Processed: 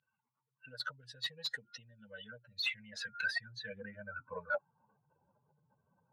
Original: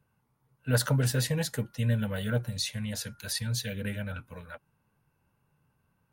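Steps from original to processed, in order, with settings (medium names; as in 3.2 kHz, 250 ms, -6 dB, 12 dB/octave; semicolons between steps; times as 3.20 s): spectral contrast enhancement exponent 2.2; compression 3:1, threshold -41 dBFS, peak gain reduction 14.5 dB; band-pass sweep 3.5 kHz -> 600 Hz, 1.98–5.17 s; overdrive pedal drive 10 dB, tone 1.6 kHz, clips at -37 dBFS; trim +18 dB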